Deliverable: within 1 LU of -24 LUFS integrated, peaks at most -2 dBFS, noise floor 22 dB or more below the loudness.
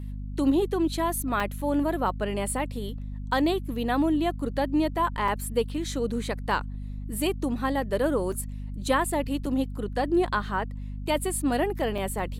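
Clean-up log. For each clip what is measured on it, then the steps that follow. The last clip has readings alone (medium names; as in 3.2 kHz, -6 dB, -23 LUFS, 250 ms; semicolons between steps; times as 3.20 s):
dropouts 5; longest dropout 3.7 ms; hum 50 Hz; highest harmonic 250 Hz; hum level -32 dBFS; loudness -27.5 LUFS; peak level -11.5 dBFS; loudness target -24.0 LUFS
-> interpolate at 1.40/5.28/8.32/9.46/11.98 s, 3.7 ms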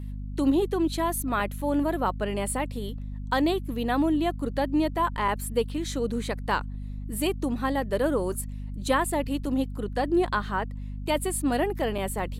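dropouts 0; hum 50 Hz; highest harmonic 250 Hz; hum level -32 dBFS
-> de-hum 50 Hz, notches 5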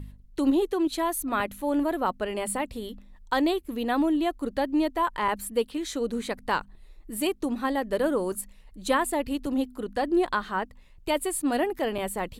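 hum not found; loudness -27.5 LUFS; peak level -12.0 dBFS; loudness target -24.0 LUFS
-> trim +3.5 dB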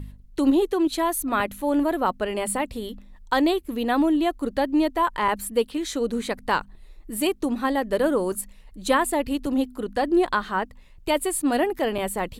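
loudness -24.0 LUFS; peak level -8.5 dBFS; noise floor -48 dBFS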